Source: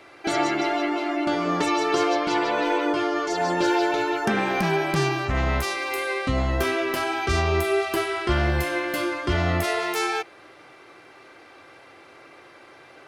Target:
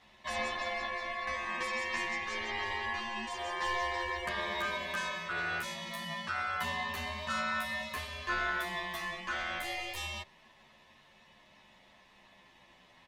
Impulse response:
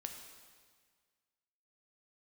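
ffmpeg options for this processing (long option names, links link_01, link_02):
-filter_complex "[0:a]aeval=exprs='val(0)*sin(2*PI*1400*n/s)':channel_layout=same,asplit=2[link_01][link_02];[link_02]adelay=10.8,afreqshift=-0.27[link_03];[link_01][link_03]amix=inputs=2:normalize=1,volume=-6.5dB"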